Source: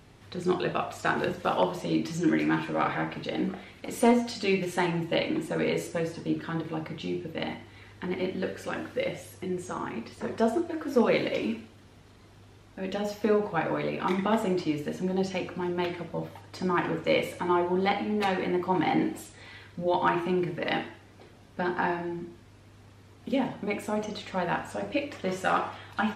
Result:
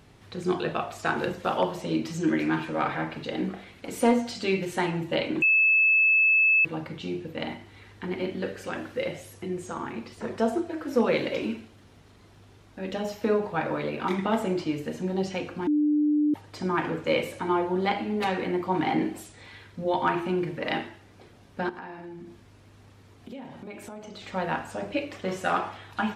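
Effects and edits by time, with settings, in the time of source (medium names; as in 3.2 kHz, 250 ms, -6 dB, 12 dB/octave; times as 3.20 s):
5.42–6.65 s: bleep 2.61 kHz -17 dBFS
15.67–16.34 s: bleep 298 Hz -19.5 dBFS
21.69–24.22 s: compression 4:1, threshold -39 dBFS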